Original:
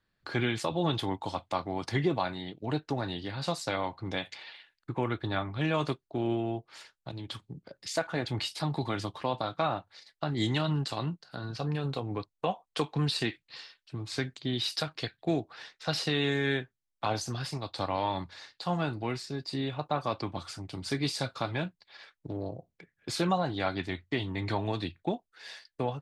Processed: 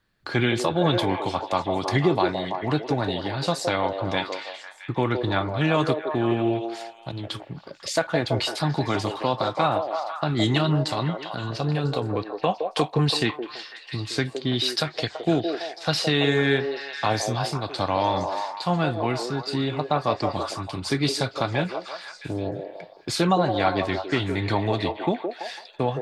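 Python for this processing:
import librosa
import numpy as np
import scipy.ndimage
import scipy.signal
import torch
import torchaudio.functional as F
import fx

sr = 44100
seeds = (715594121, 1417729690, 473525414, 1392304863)

y = fx.echo_stepped(x, sr, ms=166, hz=490.0, octaves=0.7, feedback_pct=70, wet_db=-2.0)
y = y * librosa.db_to_amplitude(7.0)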